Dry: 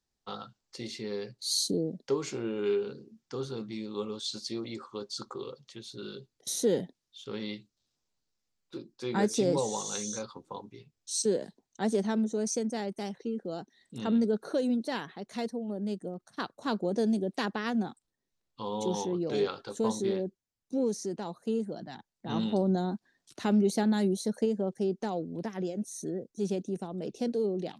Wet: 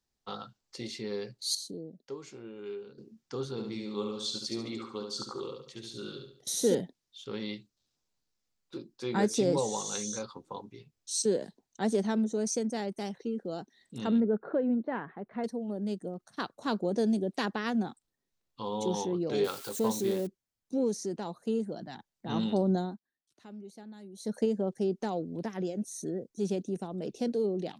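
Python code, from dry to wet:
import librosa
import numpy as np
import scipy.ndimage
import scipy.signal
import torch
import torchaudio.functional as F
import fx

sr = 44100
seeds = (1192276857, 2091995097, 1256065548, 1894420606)

y = fx.echo_feedback(x, sr, ms=71, feedback_pct=38, wet_db=-5.0, at=(3.51, 6.75))
y = fx.lowpass(y, sr, hz=1900.0, slope=24, at=(14.2, 15.44))
y = fx.crossing_spikes(y, sr, level_db=-34.0, at=(19.44, 20.27))
y = fx.edit(y, sr, fx.clip_gain(start_s=1.55, length_s=1.43, db=-11.5),
    fx.fade_down_up(start_s=22.77, length_s=1.6, db=-21.0, fade_s=0.24), tone=tone)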